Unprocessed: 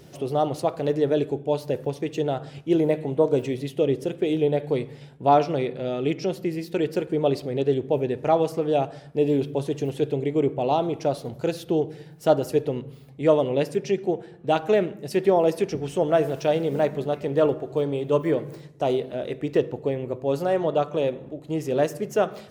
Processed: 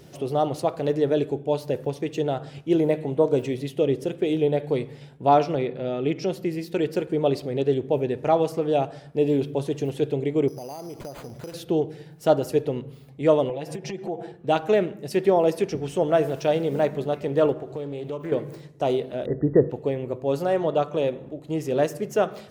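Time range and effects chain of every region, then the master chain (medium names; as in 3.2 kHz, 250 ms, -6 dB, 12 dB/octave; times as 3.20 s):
5.55–6.16 s: high-pass 49 Hz + treble shelf 5.9 kHz -12 dB
10.48–11.54 s: resonant high shelf 4.8 kHz +7 dB, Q 3 + compression 8:1, threshold -33 dBFS + sample-rate reducer 5.5 kHz
13.49–14.32 s: peaking EQ 750 Hz +10 dB 0.57 oct + compression 4:1, threshold -31 dBFS + comb 6 ms, depth 91%
17.52–18.32 s: compression 4:1, threshold -29 dBFS + loudspeaker Doppler distortion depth 0.16 ms
19.26–19.70 s: brick-wall FIR low-pass 2 kHz + tilt EQ -3 dB/octave
whole clip: none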